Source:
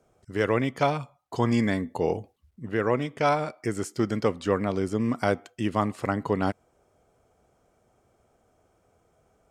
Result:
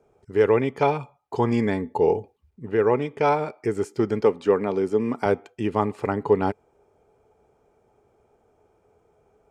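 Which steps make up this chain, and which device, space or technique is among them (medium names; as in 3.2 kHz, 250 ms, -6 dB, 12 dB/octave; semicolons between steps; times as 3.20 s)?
4.21–5.26 s: high-pass 150 Hz 12 dB/octave; inside a helmet (treble shelf 3.8 kHz -8 dB; small resonant body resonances 420/860/2400 Hz, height 11 dB, ringing for 45 ms)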